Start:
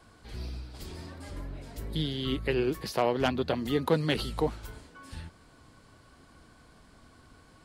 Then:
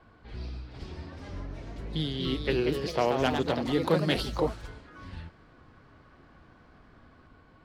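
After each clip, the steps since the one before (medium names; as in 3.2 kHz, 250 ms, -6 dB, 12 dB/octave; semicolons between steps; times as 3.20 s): level-controlled noise filter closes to 2.4 kHz, open at -24 dBFS; ever faster or slower copies 457 ms, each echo +2 st, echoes 3, each echo -6 dB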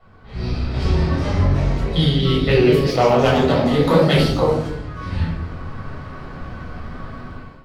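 simulated room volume 960 m³, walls furnished, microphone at 6.6 m; level rider gain up to 14.5 dB; trim -2 dB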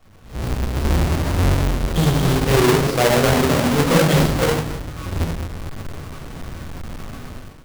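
square wave that keeps the level; trim -5 dB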